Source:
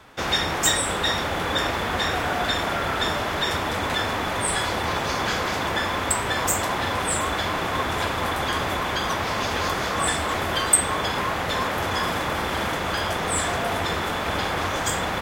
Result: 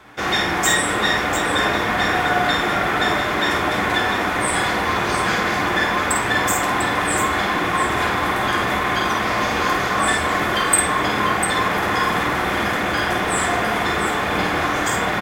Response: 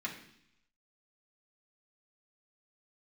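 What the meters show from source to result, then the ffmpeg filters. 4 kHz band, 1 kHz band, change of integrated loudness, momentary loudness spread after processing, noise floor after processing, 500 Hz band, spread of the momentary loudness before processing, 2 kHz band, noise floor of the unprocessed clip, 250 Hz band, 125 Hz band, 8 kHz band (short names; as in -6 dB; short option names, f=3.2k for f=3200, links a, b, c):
+2.0 dB, +5.5 dB, +5.0 dB, 3 LU, -22 dBFS, +4.0 dB, 4 LU, +7.0 dB, -27 dBFS, +6.5 dB, +2.0 dB, +1.5 dB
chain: -filter_complex "[0:a]aecho=1:1:51|697:0.596|0.398,asplit=2[a][b];[1:a]atrim=start_sample=2205,lowpass=2.9k[c];[b][c]afir=irnorm=-1:irlink=0,volume=-2.5dB[d];[a][d]amix=inputs=2:normalize=0"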